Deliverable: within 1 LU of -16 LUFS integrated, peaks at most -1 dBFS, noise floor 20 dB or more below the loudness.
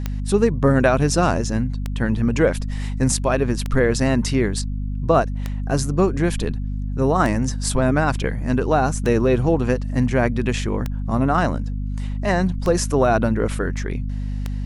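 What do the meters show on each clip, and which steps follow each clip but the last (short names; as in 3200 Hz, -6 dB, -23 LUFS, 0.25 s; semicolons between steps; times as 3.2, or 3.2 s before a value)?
clicks 9; hum 50 Hz; harmonics up to 250 Hz; hum level -22 dBFS; loudness -21.0 LUFS; peak -3.5 dBFS; loudness target -16.0 LUFS
-> de-click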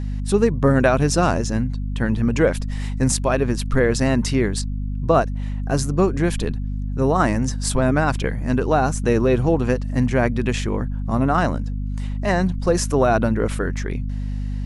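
clicks 0; hum 50 Hz; harmonics up to 250 Hz; hum level -22 dBFS
-> de-hum 50 Hz, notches 5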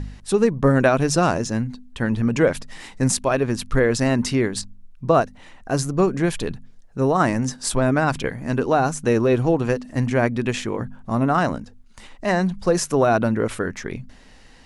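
hum none; loudness -21.5 LUFS; peak -4.5 dBFS; loudness target -16.0 LUFS
-> gain +5.5 dB; limiter -1 dBFS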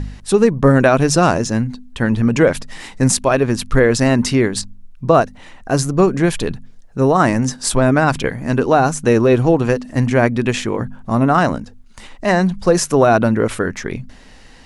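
loudness -16.0 LUFS; peak -1.0 dBFS; noise floor -41 dBFS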